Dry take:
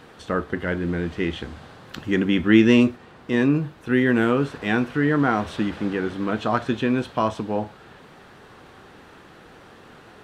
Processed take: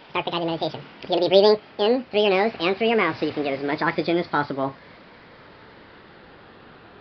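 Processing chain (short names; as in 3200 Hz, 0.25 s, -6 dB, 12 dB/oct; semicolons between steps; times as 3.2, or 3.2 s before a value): speed glide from 197% -> 95%; downsampling 11025 Hz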